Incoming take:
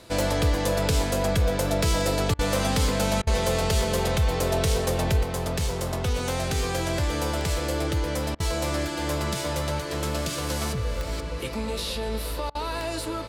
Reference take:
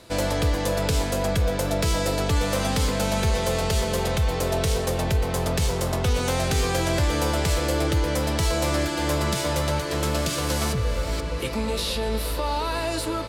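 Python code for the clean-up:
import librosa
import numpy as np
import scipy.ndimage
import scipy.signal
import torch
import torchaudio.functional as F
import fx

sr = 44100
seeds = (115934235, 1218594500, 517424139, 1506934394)

y = fx.fix_declick_ar(x, sr, threshold=10.0)
y = fx.fix_interpolate(y, sr, at_s=(2.34, 3.22, 8.35, 12.5), length_ms=49.0)
y = fx.gain(y, sr, db=fx.steps((0.0, 0.0), (5.23, 3.5)))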